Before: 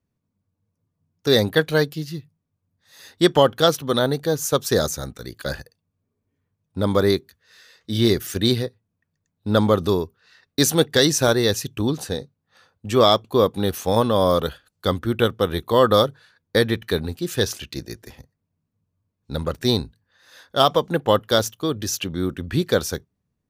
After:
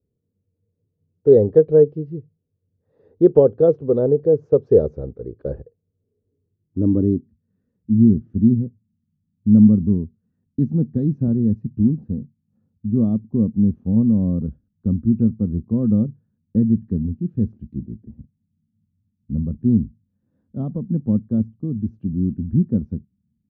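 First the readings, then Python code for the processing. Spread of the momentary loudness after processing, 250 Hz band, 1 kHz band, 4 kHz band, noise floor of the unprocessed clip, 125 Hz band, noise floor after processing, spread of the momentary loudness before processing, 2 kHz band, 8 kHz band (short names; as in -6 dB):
17 LU, +6.5 dB, under -15 dB, under -40 dB, -78 dBFS, +4.5 dB, -75 dBFS, 15 LU, under -30 dB, under -40 dB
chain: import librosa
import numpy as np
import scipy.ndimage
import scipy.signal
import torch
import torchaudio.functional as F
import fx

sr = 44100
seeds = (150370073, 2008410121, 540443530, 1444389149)

y = scipy.signal.sosfilt(scipy.signal.butter(6, 7100.0, 'lowpass', fs=sr, output='sos'), x)
y = fx.peak_eq(y, sr, hz=77.0, db=8.0, octaves=2.4)
y = fx.filter_sweep_lowpass(y, sr, from_hz=450.0, to_hz=220.0, start_s=6.27, end_s=7.36, q=5.1)
y = fx.dynamic_eq(y, sr, hz=5000.0, q=3.1, threshold_db=-51.0, ratio=4.0, max_db=4)
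y = F.gain(torch.from_numpy(y), -5.0).numpy()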